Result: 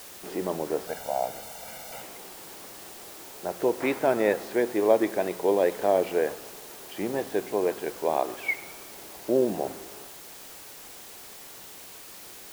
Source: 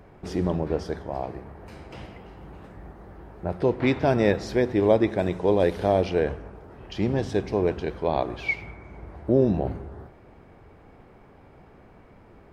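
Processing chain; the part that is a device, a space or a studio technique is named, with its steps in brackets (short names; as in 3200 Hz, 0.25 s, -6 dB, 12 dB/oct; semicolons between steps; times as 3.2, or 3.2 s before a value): wax cylinder (BPF 350–2700 Hz; wow and flutter; white noise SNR 16 dB); 0.87–2.02 comb 1.4 ms, depth 80%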